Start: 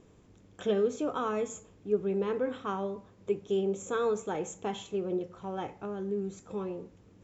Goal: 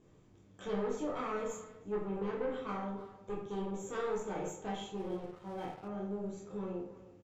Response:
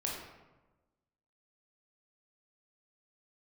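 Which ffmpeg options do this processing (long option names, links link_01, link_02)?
-filter_complex "[0:a]aeval=exprs='(tanh(22.4*val(0)+0.5)-tanh(0.5))/22.4':channel_layout=same,asplit=2[link_01][link_02];[link_02]adelay=320,highpass=300,lowpass=3400,asoftclip=type=hard:threshold=-33.5dB,volume=-15dB[link_03];[link_01][link_03]amix=inputs=2:normalize=0[link_04];[1:a]atrim=start_sample=2205,asetrate=83790,aresample=44100[link_05];[link_04][link_05]afir=irnorm=-1:irlink=0,asettb=1/sr,asplit=3[link_06][link_07][link_08];[link_06]atrim=end=4.974[link_09];[link_07]atrim=start=4.97:end=5.88,asetpts=PTS-STARTPTS,afade=type=in:duration=0.004:curve=qsin,afade=type=out:start_time=0.906:duration=0.004:curve=qsin,aeval=exprs='sgn(val(0))*max(abs(val(0))-0.0015,0)':channel_layout=same[link_10];[link_08]atrim=start=5.876[link_11];[link_09][link_10]acrossfade=duration=0.004:curve1=hsin:curve2=qsin[link_12];[link_12][link_11]acrossfade=duration=0.004:curve1=qsin:curve2=hsin"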